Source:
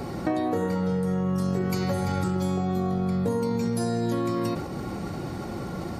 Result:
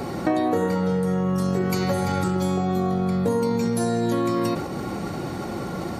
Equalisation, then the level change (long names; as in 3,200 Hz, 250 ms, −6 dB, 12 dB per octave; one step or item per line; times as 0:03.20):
low-shelf EQ 120 Hz −8 dB
notch filter 5,000 Hz, Q 19
+5.0 dB